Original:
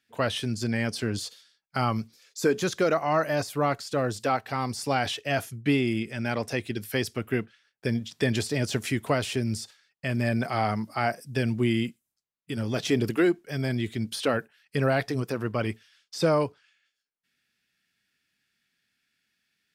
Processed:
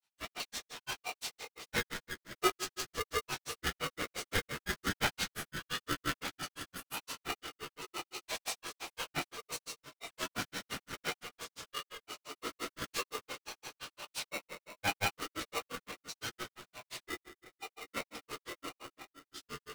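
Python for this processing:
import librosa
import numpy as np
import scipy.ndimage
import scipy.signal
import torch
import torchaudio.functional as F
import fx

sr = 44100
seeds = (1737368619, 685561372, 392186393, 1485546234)

p1 = fx.tracing_dist(x, sr, depth_ms=0.039)
p2 = scipy.signal.sosfilt(scipy.signal.butter(4, 51.0, 'highpass', fs=sr, output='sos'), p1)
p3 = fx.high_shelf(p2, sr, hz=6100.0, db=3.0)
p4 = fx.clip_asym(p3, sr, top_db=-25.5, bottom_db=-14.0)
p5 = p3 + F.gain(torch.from_numpy(p4), -11.5).numpy()
p6 = fx.filter_lfo_highpass(p5, sr, shape='saw_down', hz=0.38, low_hz=560.0, high_hz=2400.0, q=0.86)
p7 = fx.pitch_keep_formants(p6, sr, semitones=-4.5)
p8 = fx.echo_pitch(p7, sr, ms=129, semitones=-3, count=2, db_per_echo=-6.0)
p9 = p8 + fx.echo_banded(p8, sr, ms=217, feedback_pct=70, hz=630.0, wet_db=-11, dry=0)
p10 = fx.room_shoebox(p9, sr, seeds[0], volume_m3=41.0, walls='mixed', distance_m=0.99)
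p11 = fx.granulator(p10, sr, seeds[1], grain_ms=111.0, per_s=5.8, spray_ms=100.0, spread_st=0)
p12 = p11 * np.sign(np.sin(2.0 * np.pi * 820.0 * np.arange(len(p11)) / sr))
y = F.gain(torch.from_numpy(p12), -7.5).numpy()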